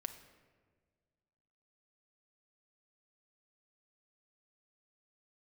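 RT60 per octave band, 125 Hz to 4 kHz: 2.2 s, 2.0 s, 1.8 s, 1.4 s, 1.3 s, 0.90 s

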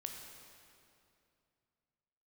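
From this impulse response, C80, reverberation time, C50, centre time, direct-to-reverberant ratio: 4.5 dB, 2.6 s, 3.5 dB, 72 ms, 2.0 dB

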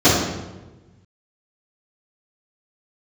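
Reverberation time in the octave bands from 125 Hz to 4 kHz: 1.8 s, 1.4 s, 1.3 s, 1.0 s, 0.90 s, 0.80 s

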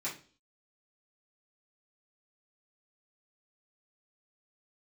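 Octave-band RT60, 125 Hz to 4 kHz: 0.45 s, 0.50 s, 0.45 s, 0.35 s, 0.35 s, 0.45 s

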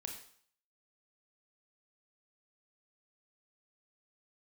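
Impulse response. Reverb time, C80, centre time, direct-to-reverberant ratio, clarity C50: 0.55 s, 9.0 dB, 26 ms, 2.0 dB, 6.0 dB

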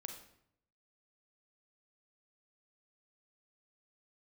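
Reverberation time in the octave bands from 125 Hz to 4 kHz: 0.95 s, 0.85 s, 0.75 s, 0.70 s, 0.65 s, 0.55 s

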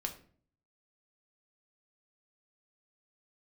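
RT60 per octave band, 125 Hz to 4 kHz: 0.80 s, 0.65 s, 0.55 s, 0.45 s, 0.40 s, 0.35 s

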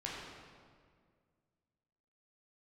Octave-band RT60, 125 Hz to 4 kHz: 2.5 s, 2.3 s, 2.1 s, 1.8 s, 1.6 s, 1.3 s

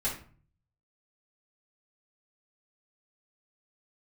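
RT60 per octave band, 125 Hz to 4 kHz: 0.85 s, 0.60 s, 0.45 s, 0.45 s, 0.40 s, 0.30 s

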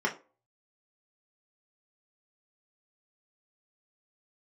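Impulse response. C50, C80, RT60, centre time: 14.0 dB, 20.0 dB, 0.35 s, 14 ms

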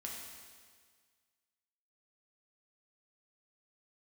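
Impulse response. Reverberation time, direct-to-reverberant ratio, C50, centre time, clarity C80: 1.7 s, -3.0 dB, 1.0 dB, 82 ms, 3.0 dB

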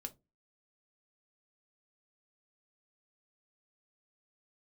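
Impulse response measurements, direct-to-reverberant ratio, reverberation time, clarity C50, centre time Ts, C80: 5.0 dB, no single decay rate, 20.5 dB, 6 ms, 29.5 dB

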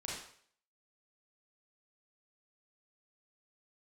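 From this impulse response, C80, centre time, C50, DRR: 5.0 dB, 57 ms, 0.0 dB, -5.0 dB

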